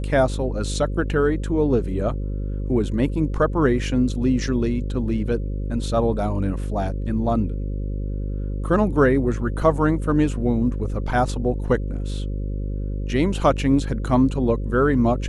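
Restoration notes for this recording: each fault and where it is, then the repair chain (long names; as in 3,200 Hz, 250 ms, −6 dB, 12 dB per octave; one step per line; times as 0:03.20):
mains buzz 50 Hz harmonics 11 −26 dBFS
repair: hum removal 50 Hz, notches 11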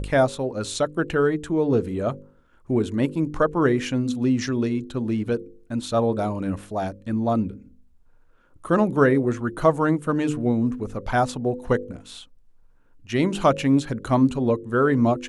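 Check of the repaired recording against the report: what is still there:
none of them is left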